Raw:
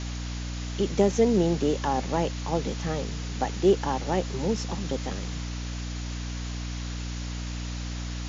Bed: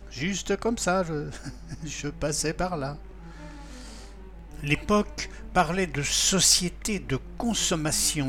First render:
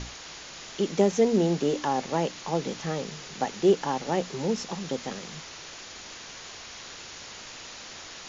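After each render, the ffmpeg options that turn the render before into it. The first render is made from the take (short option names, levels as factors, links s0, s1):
-af "bandreject=f=60:t=h:w=6,bandreject=f=120:t=h:w=6,bandreject=f=180:t=h:w=6,bandreject=f=240:t=h:w=6,bandreject=f=300:t=h:w=6"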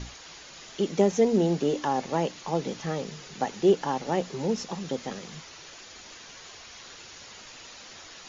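-af "afftdn=nr=6:nf=-43"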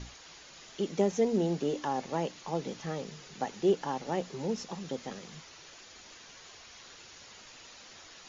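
-af "volume=0.531"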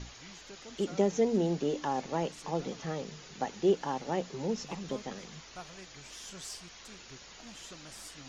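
-filter_complex "[1:a]volume=0.0596[s0];[0:a][s0]amix=inputs=2:normalize=0"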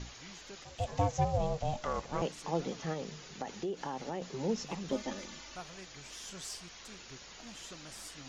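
-filter_complex "[0:a]asettb=1/sr,asplit=3[s0][s1][s2];[s0]atrim=end=0.644[s3];[s1]atrim=start=0.64:end=2.22,asetpts=PTS-STARTPTS,afade=t=in:d=0.004:c=qsin,afade=t=out:st=1.576:d=0.004:c=qsin,aeval=exprs='val(0)*sin(2*PI*310*n/s)':c=same[s4];[s2]atrim=start=2.216[s5];[s3][s4]acrossfade=d=0.004:c1=hsin:c2=qsin[s6];[s6][s5]acrossfade=d=0.004:c1=qsin:c2=hsin,asettb=1/sr,asplit=3[s7][s8][s9];[s7]atrim=end=2.934[s10];[s8]atrim=start=2.93:end=4.22,asetpts=PTS-STARTPTS,afade=t=in:d=0.004:c=qsin,afade=t=out:st=1.286:d=0.004:c=qsin,acompressor=threshold=0.0224:ratio=6:attack=3.2:release=140:knee=1:detection=peak[s11];[s9]atrim=start=4.216[s12];[s10][s11]acrossfade=d=0.004:c1=hsin:c2=qsin[s13];[s13][s12]acrossfade=d=0.004:c1=qsin:c2=hsin,asettb=1/sr,asplit=3[s14][s15][s16];[s14]atrim=end=4.924[s17];[s15]atrim=start=4.92:end=5.56,asetpts=PTS-STARTPTS,afade=t=in:d=0.004:c=qsin,afade=t=out:st=0.636:d=0.004:c=qsin,aecho=1:1:3.4:0.8,atrim=end_sample=28224[s18];[s16]atrim=start=5.556[s19];[s17][s18]acrossfade=d=0.004:c1=hsin:c2=qsin[s20];[s20][s19]acrossfade=d=0.004:c1=qsin:c2=hsin"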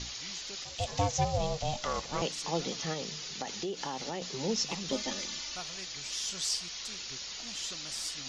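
-af "equalizer=f=4700:t=o:w=1.9:g=13.5,bandreject=f=1600:w=27"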